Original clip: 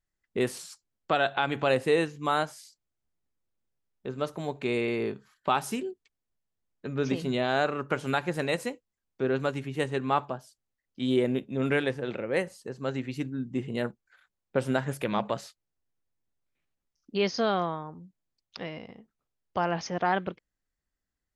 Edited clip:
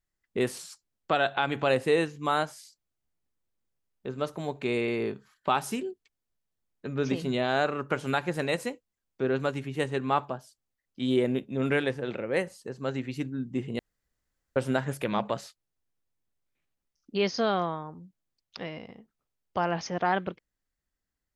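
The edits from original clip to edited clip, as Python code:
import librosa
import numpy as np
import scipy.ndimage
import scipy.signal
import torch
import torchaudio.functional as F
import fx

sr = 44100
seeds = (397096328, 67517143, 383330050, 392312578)

y = fx.edit(x, sr, fx.room_tone_fill(start_s=13.79, length_s=0.77), tone=tone)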